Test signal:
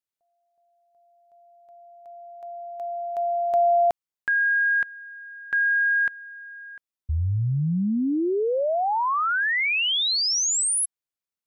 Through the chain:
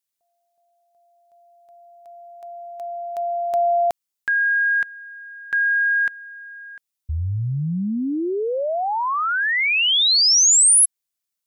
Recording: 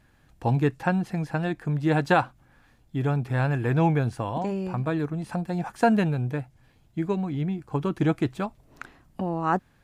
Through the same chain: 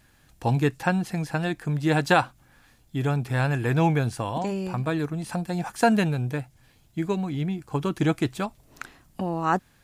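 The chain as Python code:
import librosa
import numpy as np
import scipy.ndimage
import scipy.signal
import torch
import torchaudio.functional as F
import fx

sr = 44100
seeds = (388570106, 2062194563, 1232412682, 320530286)

y = fx.high_shelf(x, sr, hz=3100.0, db=11.0)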